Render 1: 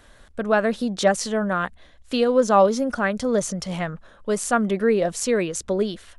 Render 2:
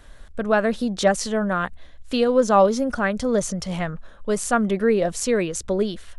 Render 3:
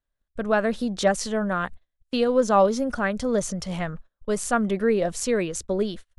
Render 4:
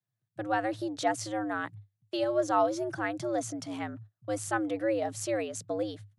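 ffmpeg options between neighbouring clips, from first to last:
-af "lowshelf=f=62:g=11.5"
-af "agate=range=-35dB:threshold=-32dB:ratio=16:detection=peak,volume=-2.5dB"
-af "afreqshift=100,volume=-7.5dB"

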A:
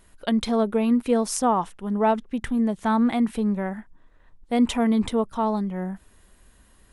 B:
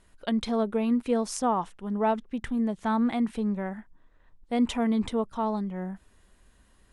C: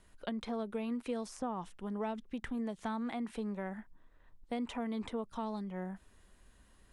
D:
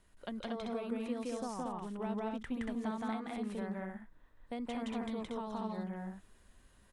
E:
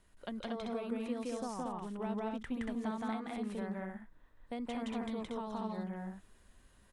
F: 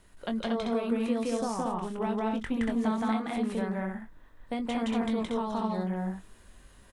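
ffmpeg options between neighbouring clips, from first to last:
-af "lowpass=8.8k,volume=-4.5dB"
-filter_complex "[0:a]acrossover=split=340|2200[a][b][c];[a]acompressor=threshold=-39dB:ratio=4[d];[b]acompressor=threshold=-37dB:ratio=4[e];[c]acompressor=threshold=-50dB:ratio=4[f];[d][e][f]amix=inputs=3:normalize=0,volume=-2.5dB"
-af "aecho=1:1:169.1|233.2:1|0.708,volume=-4dB"
-af anull
-filter_complex "[0:a]asplit=2[a][b];[b]adelay=22,volume=-8dB[c];[a][c]amix=inputs=2:normalize=0,volume=8dB"

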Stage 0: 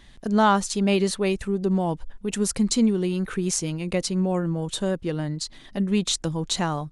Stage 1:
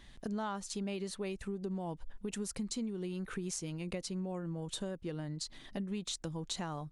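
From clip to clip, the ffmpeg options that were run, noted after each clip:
-af "acompressor=threshold=-31dB:ratio=5,volume=-5.5dB"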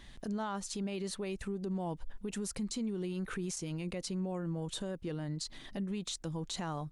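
-af "alimiter=level_in=8.5dB:limit=-24dB:level=0:latency=1:release=16,volume=-8.5dB,volume=3dB"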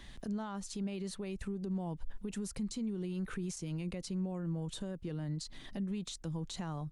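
-filter_complex "[0:a]acrossover=split=220[a][b];[b]acompressor=threshold=-56dB:ratio=1.5[c];[a][c]amix=inputs=2:normalize=0,volume=2dB"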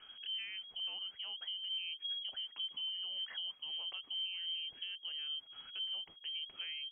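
-af "lowpass=f=2.8k:t=q:w=0.5098,lowpass=f=2.8k:t=q:w=0.6013,lowpass=f=2.8k:t=q:w=0.9,lowpass=f=2.8k:t=q:w=2.563,afreqshift=-3300,volume=-4dB"

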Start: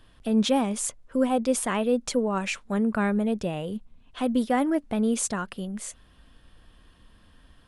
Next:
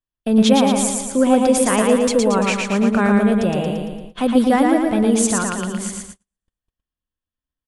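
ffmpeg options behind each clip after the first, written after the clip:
-filter_complex "[0:a]asplit=2[a][b];[b]aecho=0:1:114|228|342|456|570|684|798|912:0.708|0.389|0.214|0.118|0.0648|0.0356|0.0196|0.0108[c];[a][c]amix=inputs=2:normalize=0,agate=range=-45dB:threshold=-40dB:ratio=16:detection=peak,volume=7dB"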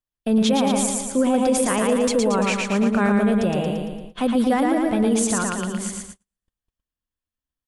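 -af "alimiter=limit=-9dB:level=0:latency=1:release=18,volume=-2dB"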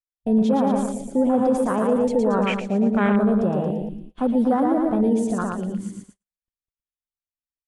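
-af "afwtdn=0.0631"

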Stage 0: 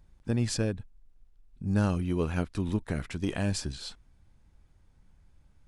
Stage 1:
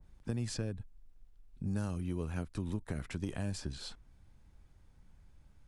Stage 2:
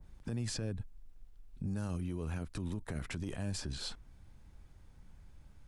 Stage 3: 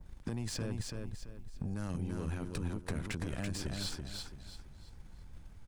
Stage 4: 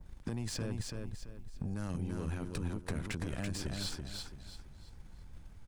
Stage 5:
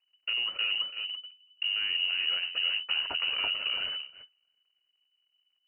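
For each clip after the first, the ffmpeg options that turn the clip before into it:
-filter_complex "[0:a]acrossover=split=160|6400[a][b][c];[a]acompressor=threshold=-38dB:ratio=4[d];[b]acompressor=threshold=-39dB:ratio=4[e];[c]acompressor=threshold=-47dB:ratio=4[f];[d][e][f]amix=inputs=3:normalize=0,adynamicequalizer=threshold=0.00158:dfrequency=1900:dqfactor=0.7:tfrequency=1900:tqfactor=0.7:attack=5:release=100:ratio=0.375:range=2:mode=cutabove:tftype=highshelf"
-af "alimiter=level_in=9.5dB:limit=-24dB:level=0:latency=1:release=31,volume=-9.5dB,volume=4dB"
-af "acompressor=threshold=-42dB:ratio=6,aeval=exprs='0.0224*(cos(1*acos(clip(val(0)/0.0224,-1,1)))-cos(1*PI/2))+0.00141*(cos(7*acos(clip(val(0)/0.0224,-1,1)))-cos(7*PI/2))+0.000631*(cos(8*acos(clip(val(0)/0.0224,-1,1)))-cos(8*PI/2))':c=same,aecho=1:1:334|668|1002|1336:0.631|0.202|0.0646|0.0207,volume=7dB"
-af anull
-af "aeval=exprs='val(0)+0.5*0.00501*sgn(val(0))':c=same,agate=range=-36dB:threshold=-37dB:ratio=16:detection=peak,lowpass=f=2.6k:t=q:w=0.5098,lowpass=f=2.6k:t=q:w=0.6013,lowpass=f=2.6k:t=q:w=0.9,lowpass=f=2.6k:t=q:w=2.563,afreqshift=-3000,volume=6dB"

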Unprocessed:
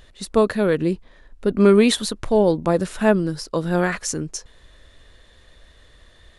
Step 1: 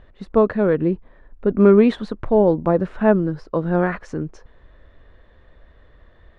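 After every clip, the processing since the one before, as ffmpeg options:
-af "lowpass=1.5k,volume=1.5dB"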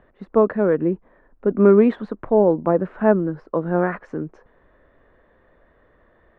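-filter_complex "[0:a]acrossover=split=160 2300:gain=0.224 1 0.126[a][b][c];[a][b][c]amix=inputs=3:normalize=0"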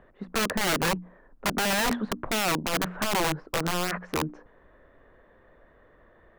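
-af "alimiter=limit=-13.5dB:level=0:latency=1:release=72,bandreject=f=60:t=h:w=6,bandreject=f=120:t=h:w=6,bandreject=f=180:t=h:w=6,bandreject=f=240:t=h:w=6,bandreject=f=300:t=h:w=6,aeval=exprs='(mod(9.44*val(0)+1,2)-1)/9.44':c=same"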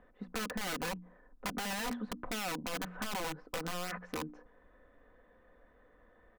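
-af "aecho=1:1:4:0.5,acompressor=threshold=-29dB:ratio=2.5,volume=-7.5dB"

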